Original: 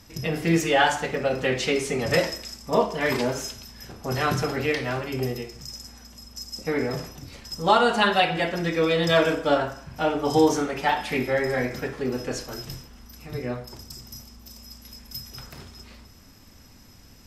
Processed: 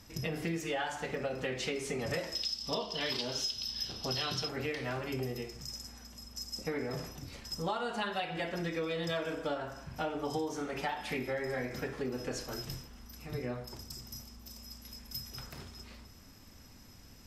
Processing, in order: 2.35–4.49 band shelf 4000 Hz +16 dB 1.2 oct; compressor 6:1, threshold -28 dBFS, peak gain reduction 14.5 dB; gain -4.5 dB

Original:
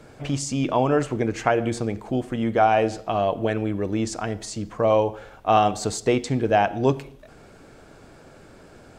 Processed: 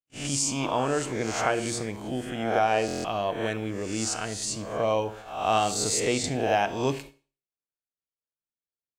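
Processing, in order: spectral swells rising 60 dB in 0.69 s; gate -35 dBFS, range -56 dB; high shelf 2600 Hz +11.5 dB; Schroeder reverb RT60 0.39 s, combs from 25 ms, DRR 14 dB; stuck buffer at 2.86/8.2, samples 1024, times 7; gain -8 dB

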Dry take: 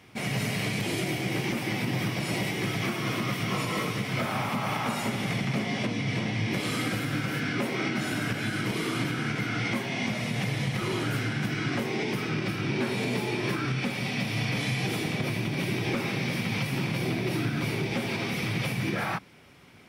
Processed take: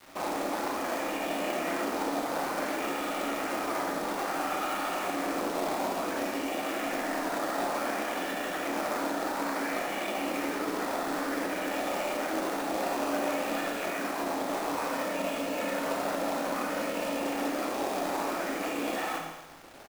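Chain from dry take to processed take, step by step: minimum comb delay 1.8 ms; 14.67–17.22 comb 2.5 ms, depth 55%; limiter -25.5 dBFS, peak gain reduction 6.5 dB; decimation with a swept rate 12×, swing 60% 0.57 Hz; frequency shift +160 Hz; band-pass 730 Hz, Q 0.63; companded quantiser 4-bit; echo 0.163 s -13 dB; Schroeder reverb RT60 1 s, combs from 25 ms, DRR 2.5 dB; gain +3 dB

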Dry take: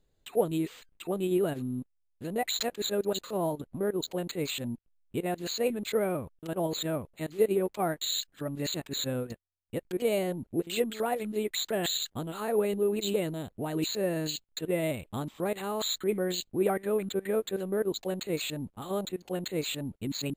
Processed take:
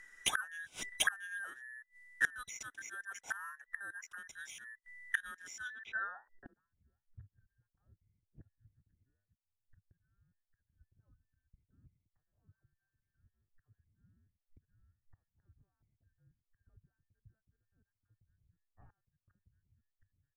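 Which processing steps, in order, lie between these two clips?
band inversion scrambler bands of 2000 Hz; flipped gate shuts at -30 dBFS, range -29 dB; low-pass sweep 9700 Hz -> 100 Hz, 5.56–6.73; gain +12 dB

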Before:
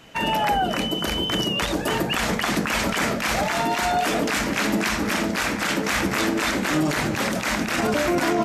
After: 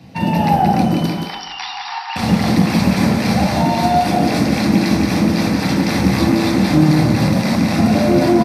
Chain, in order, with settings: 1.06–2.16 brick-wall FIR band-pass 720–5800 Hz; echo 0.175 s -4 dB; reverb RT60 1.0 s, pre-delay 3 ms, DRR 1 dB; gain -6 dB

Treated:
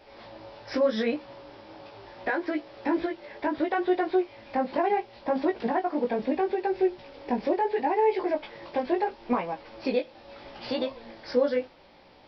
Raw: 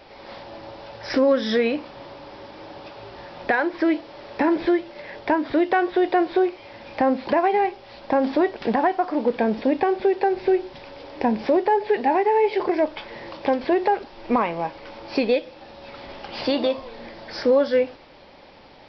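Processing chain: time stretch by phase-locked vocoder 0.65×; chorus 0.74 Hz, delay 16 ms, depth 4.6 ms; gain -2.5 dB

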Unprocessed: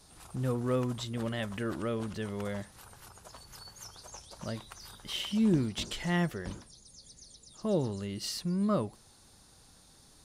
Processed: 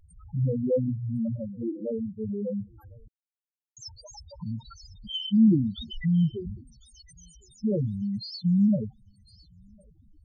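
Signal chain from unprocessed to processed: 1.36–2.23 expander -31 dBFS; in parallel at 0 dB: compressor, threshold -39 dBFS, peak gain reduction 16 dB; on the sum: loudest bins only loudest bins 2; thinning echo 1.055 s, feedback 24%, high-pass 1200 Hz, level -20 dB; 3.08–3.77 requantised 6-bit, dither none; gain +7.5 dB

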